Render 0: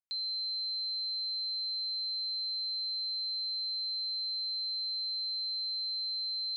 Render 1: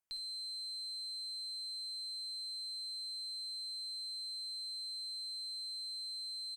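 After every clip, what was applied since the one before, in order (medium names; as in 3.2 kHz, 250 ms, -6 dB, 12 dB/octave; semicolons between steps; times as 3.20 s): peaking EQ 3.9 kHz -10.5 dB 0.42 oct; valve stage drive 40 dB, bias 0.45; on a send: early reflections 55 ms -10 dB, 72 ms -14.5 dB; on the sum: trim +5.5 dB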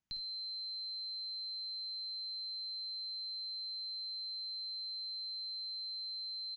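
steep low-pass 6.9 kHz 96 dB/octave; resonant low shelf 310 Hz +11 dB, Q 1.5; trim +1 dB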